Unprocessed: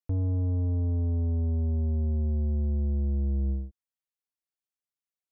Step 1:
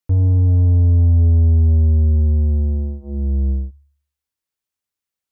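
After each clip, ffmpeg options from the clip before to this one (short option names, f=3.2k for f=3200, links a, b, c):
-af "equalizer=f=84:w=2.7:g=7.5,bandreject=f=690:w=13,bandreject=f=71.05:t=h:w=4,bandreject=f=142.1:t=h:w=4,bandreject=f=213.15:t=h:w=4,bandreject=f=284.2:t=h:w=4,bandreject=f=355.25:t=h:w=4,bandreject=f=426.3:t=h:w=4,bandreject=f=497.35:t=h:w=4,bandreject=f=568.4:t=h:w=4,bandreject=f=639.45:t=h:w=4,bandreject=f=710.5:t=h:w=4,bandreject=f=781.55:t=h:w=4,bandreject=f=852.6:t=h:w=4,bandreject=f=923.65:t=h:w=4,bandreject=f=994.7:t=h:w=4,bandreject=f=1.06575k:t=h:w=4,bandreject=f=1.1368k:t=h:w=4,bandreject=f=1.20785k:t=h:w=4,volume=7.5dB"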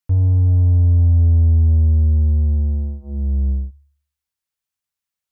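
-af "equalizer=f=370:w=1.1:g=-7"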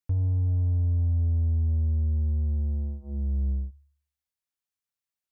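-af "acompressor=threshold=-18dB:ratio=2.5,volume=-6.5dB"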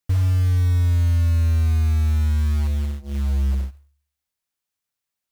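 -af "acrusher=bits=5:mode=log:mix=0:aa=0.000001,volume=6dB"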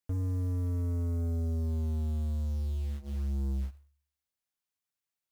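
-af "volume=22.5dB,asoftclip=hard,volume=-22.5dB,volume=-7dB"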